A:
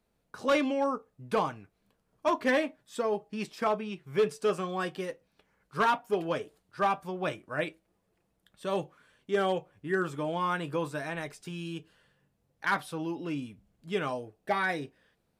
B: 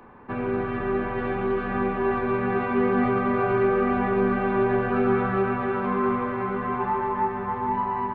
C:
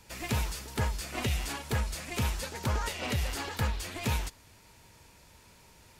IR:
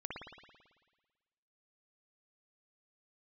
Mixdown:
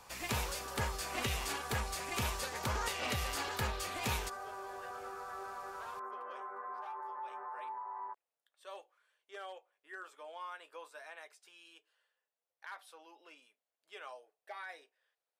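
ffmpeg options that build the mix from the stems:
-filter_complex "[0:a]volume=-12dB[a];[1:a]lowpass=f=1.5k:w=0.5412,lowpass=f=1.5k:w=1.3066,volume=-6dB[b];[2:a]volume=-1.5dB[c];[a][b]amix=inputs=2:normalize=0,highpass=f=500:w=0.5412,highpass=f=500:w=1.3066,alimiter=level_in=11dB:limit=-24dB:level=0:latency=1:release=155,volume=-11dB,volume=0dB[d];[c][d]amix=inputs=2:normalize=0,lowshelf=f=430:g=-7.5"

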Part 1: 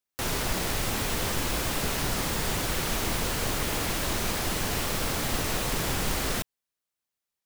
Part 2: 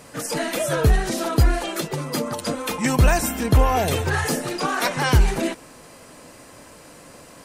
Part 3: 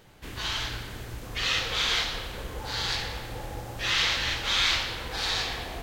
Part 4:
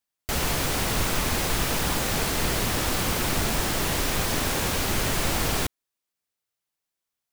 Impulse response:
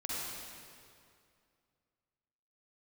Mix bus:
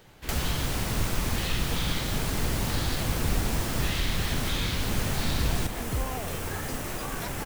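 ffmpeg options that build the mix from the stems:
-filter_complex "[0:a]equalizer=f=4.3k:w=1.5:g=-7,adelay=1400,volume=-4.5dB[a];[1:a]adelay=2400,volume=-14.5dB[b];[2:a]volume=1dB[c];[3:a]volume=0dB[d];[a][b][c][d]amix=inputs=4:normalize=0,acrusher=bits=4:mode=log:mix=0:aa=0.000001,acrossover=split=240[e][f];[f]acompressor=threshold=-31dB:ratio=5[g];[e][g]amix=inputs=2:normalize=0"

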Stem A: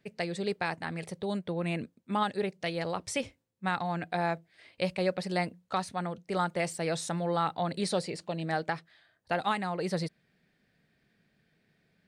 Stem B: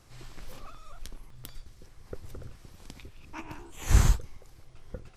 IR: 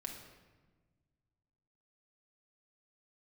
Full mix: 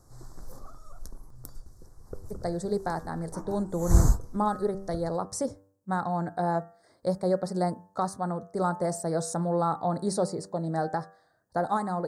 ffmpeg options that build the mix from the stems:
-filter_complex "[0:a]acontrast=64,adelay=2250,volume=-2.5dB[a];[1:a]volume=1dB[b];[a][b]amix=inputs=2:normalize=0,asuperstop=centerf=2700:order=4:qfactor=0.6,bandreject=f=97.42:t=h:w=4,bandreject=f=194.84:t=h:w=4,bandreject=f=292.26:t=h:w=4,bandreject=f=389.68:t=h:w=4,bandreject=f=487.1:t=h:w=4,bandreject=f=584.52:t=h:w=4,bandreject=f=681.94:t=h:w=4,bandreject=f=779.36:t=h:w=4,bandreject=f=876.78:t=h:w=4,bandreject=f=974.2:t=h:w=4,bandreject=f=1.07162k:t=h:w=4,bandreject=f=1.16904k:t=h:w=4,bandreject=f=1.26646k:t=h:w=4,bandreject=f=1.36388k:t=h:w=4,bandreject=f=1.4613k:t=h:w=4,bandreject=f=1.55872k:t=h:w=4,bandreject=f=1.65614k:t=h:w=4,bandreject=f=1.75356k:t=h:w=4,bandreject=f=1.85098k:t=h:w=4"

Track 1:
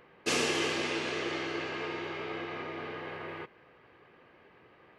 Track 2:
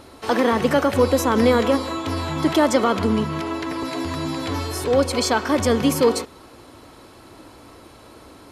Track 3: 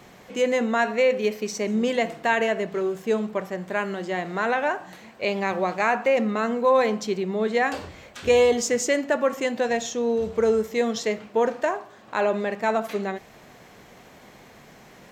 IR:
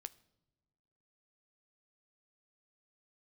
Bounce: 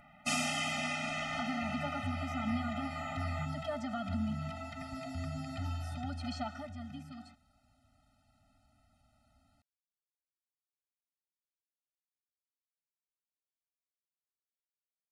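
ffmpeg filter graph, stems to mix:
-filter_complex "[0:a]equalizer=f=100:t=o:w=0.67:g=-10,equalizer=f=4k:t=o:w=0.67:g=-6,equalizer=f=10k:t=o:w=0.67:g=4,volume=2dB,asplit=2[a][b];[b]volume=-4dB[c];[1:a]lowpass=f=11k:w=0.5412,lowpass=f=11k:w=1.3066,acrossover=split=4000[d][e];[e]acompressor=threshold=-43dB:ratio=4:attack=1:release=60[f];[d][f]amix=inputs=2:normalize=0,adelay=1100,volume=-11dB,afade=t=out:st=6.45:d=0.24:silence=0.237137[g];[a][g]amix=inputs=2:normalize=0,lowshelf=f=77:g=10.5,acompressor=threshold=-32dB:ratio=2,volume=0dB[h];[3:a]atrim=start_sample=2205[i];[c][i]afir=irnorm=-1:irlink=0[j];[h][j]amix=inputs=2:normalize=0,afftfilt=real='re*eq(mod(floor(b*sr/1024/300),2),0)':imag='im*eq(mod(floor(b*sr/1024/300),2),0)':win_size=1024:overlap=0.75"

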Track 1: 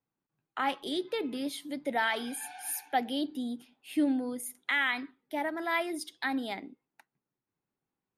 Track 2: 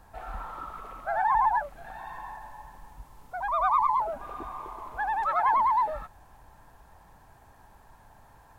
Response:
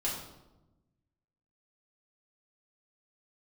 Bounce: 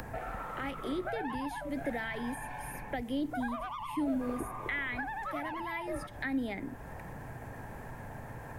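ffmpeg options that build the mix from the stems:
-filter_complex "[0:a]volume=-4dB[a];[1:a]asoftclip=type=tanh:threshold=-17.5dB,acompressor=threshold=-29dB:ratio=6,bandreject=f=196.3:t=h:w=4,bandreject=f=392.6:t=h:w=4,bandreject=f=588.9:t=h:w=4,bandreject=f=785.2:t=h:w=4,bandreject=f=981.5:t=h:w=4,bandreject=f=1.1778k:t=h:w=4,bandreject=f=1.3741k:t=h:w=4,bandreject=f=1.5704k:t=h:w=4,bandreject=f=1.7667k:t=h:w=4,bandreject=f=1.963k:t=h:w=4,bandreject=f=2.1593k:t=h:w=4,bandreject=f=2.3556k:t=h:w=4,bandreject=f=2.5519k:t=h:w=4,bandreject=f=2.7482k:t=h:w=4,bandreject=f=2.9445k:t=h:w=4,bandreject=f=3.1408k:t=h:w=4,bandreject=f=3.3371k:t=h:w=4,bandreject=f=3.5334k:t=h:w=4,bandreject=f=3.7297k:t=h:w=4,bandreject=f=3.926k:t=h:w=4,bandreject=f=4.1223k:t=h:w=4,bandreject=f=4.3186k:t=h:w=4,bandreject=f=4.5149k:t=h:w=4,bandreject=f=4.7112k:t=h:w=4,bandreject=f=4.9075k:t=h:w=4,bandreject=f=5.1038k:t=h:w=4,bandreject=f=5.3001k:t=h:w=4,bandreject=f=5.4964k:t=h:w=4,bandreject=f=5.6927k:t=h:w=4,bandreject=f=5.889k:t=h:w=4,bandreject=f=6.0853k:t=h:w=4,volume=2dB[b];[a][b]amix=inputs=2:normalize=0,acrossover=split=170|3100[c][d][e];[c]acompressor=threshold=-46dB:ratio=4[f];[d]acompressor=threshold=-42dB:ratio=4[g];[e]acompressor=threshold=-51dB:ratio=4[h];[f][g][h]amix=inputs=3:normalize=0,equalizer=f=125:t=o:w=1:g=11,equalizer=f=250:t=o:w=1:g=7,equalizer=f=500:t=o:w=1:g=9,equalizer=f=1k:t=o:w=1:g=-4,equalizer=f=2k:t=o:w=1:g=10,equalizer=f=4k:t=o:w=1:g=-6,acompressor=mode=upward:threshold=-37dB:ratio=2.5"

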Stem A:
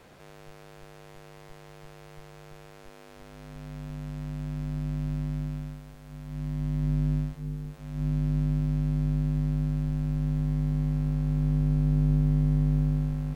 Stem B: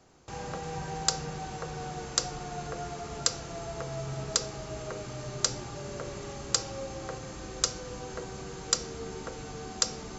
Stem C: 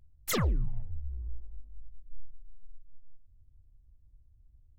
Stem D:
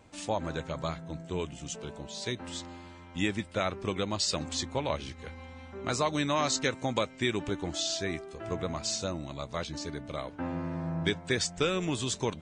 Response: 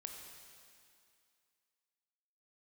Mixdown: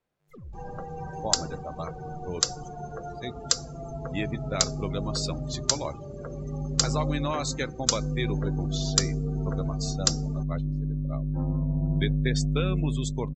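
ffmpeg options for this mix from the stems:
-filter_complex "[0:a]volume=-2.5dB[a];[1:a]equalizer=f=4.2k:w=0.48:g=4,adelay=250,volume=0dB[b];[2:a]volume=-15dB[c];[3:a]agate=range=-7dB:threshold=-35dB:ratio=16:detection=peak,adelay=950,volume=-1.5dB[d];[a][b][c][d]amix=inputs=4:normalize=0,afftdn=nr=27:nf=-36"

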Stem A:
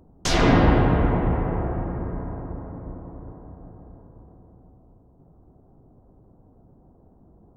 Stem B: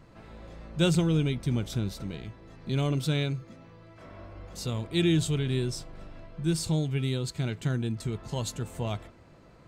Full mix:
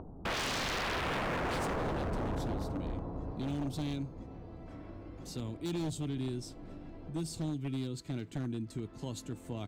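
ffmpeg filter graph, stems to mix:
-filter_complex "[0:a]lowpass=f=1.7k:w=0.5412,lowpass=f=1.7k:w=1.3066,bandreject=f=60:t=h:w=6,bandreject=f=120:t=h:w=6,bandreject=f=180:t=h:w=6,bandreject=f=240:t=h:w=6,bandreject=f=300:t=h:w=6,bandreject=f=360:t=h:w=6,volume=0dB[a];[1:a]equalizer=f=290:t=o:w=0.55:g=14.5,acrossover=split=200|3000[b][c][d];[c]acompressor=threshold=-27dB:ratio=8[e];[b][e][d]amix=inputs=3:normalize=0,adelay=700,volume=-10dB[f];[a][f]amix=inputs=2:normalize=0,volume=16dB,asoftclip=hard,volume=-16dB,acompressor=mode=upward:threshold=-40dB:ratio=2.5,aeval=exprs='0.0355*(abs(mod(val(0)/0.0355+3,4)-2)-1)':c=same"

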